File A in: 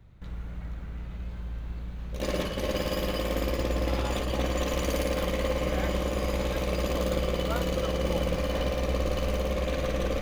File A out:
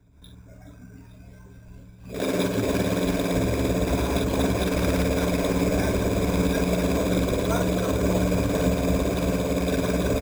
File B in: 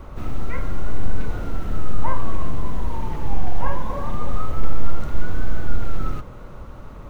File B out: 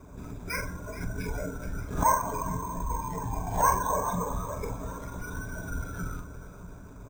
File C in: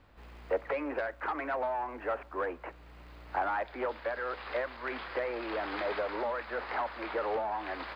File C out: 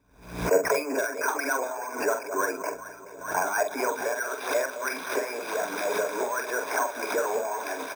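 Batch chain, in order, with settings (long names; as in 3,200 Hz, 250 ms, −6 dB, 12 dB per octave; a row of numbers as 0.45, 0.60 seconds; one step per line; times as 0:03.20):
high-pass filter 86 Hz 12 dB per octave
noise reduction from a noise print of the clip's start 16 dB
EQ curve with evenly spaced ripples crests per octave 1.6, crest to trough 16 dB
harmonic and percussive parts rebalanced harmonic −15 dB
spectral tilt −2 dB per octave
reversed playback
upward compression, threshold −48 dBFS
reversed playback
double-tracking delay 45 ms −6.5 dB
on a send: delay that swaps between a low-pass and a high-pass 213 ms, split 890 Hz, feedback 75%, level −12 dB
on the sum: bad sample-rate conversion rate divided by 6×, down none, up hold
background raised ahead of every attack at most 100 dB per second
level +7 dB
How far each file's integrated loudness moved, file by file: +6.0, −0.5, +6.5 LU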